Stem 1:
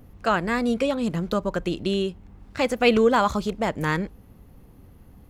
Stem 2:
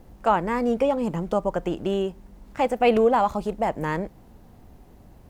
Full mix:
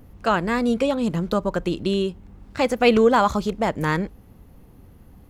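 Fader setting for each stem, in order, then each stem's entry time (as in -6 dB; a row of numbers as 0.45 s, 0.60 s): +1.0 dB, -11.5 dB; 0.00 s, 0.00 s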